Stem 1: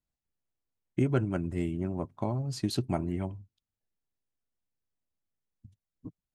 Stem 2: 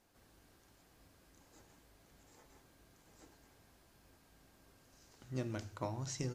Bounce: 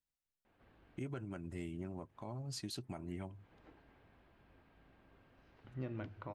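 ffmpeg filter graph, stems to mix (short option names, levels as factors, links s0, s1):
-filter_complex "[0:a]tiltshelf=f=790:g=-3.5,volume=0.447,asplit=2[s0][s1];[1:a]lowpass=f=3000:w=0.5412,lowpass=f=3000:w=1.3066,adelay=450,volume=1.06[s2];[s1]apad=whole_len=299495[s3];[s2][s3]sidechaincompress=threshold=0.00224:ratio=10:attack=16:release=184[s4];[s0][s4]amix=inputs=2:normalize=0,alimiter=level_in=2.82:limit=0.0631:level=0:latency=1:release=183,volume=0.355"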